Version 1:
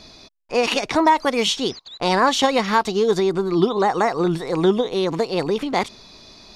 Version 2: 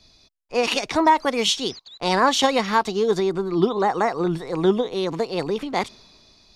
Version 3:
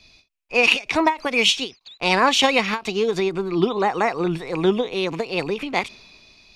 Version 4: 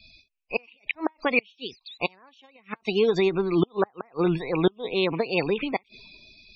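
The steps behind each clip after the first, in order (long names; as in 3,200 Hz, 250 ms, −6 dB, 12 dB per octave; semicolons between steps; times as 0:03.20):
multiband upward and downward expander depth 40%; level −2 dB
parametric band 2,500 Hz +13.5 dB 0.47 octaves; every ending faded ahead of time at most 260 dB per second
gate with flip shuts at −9 dBFS, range −37 dB; spectral peaks only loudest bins 64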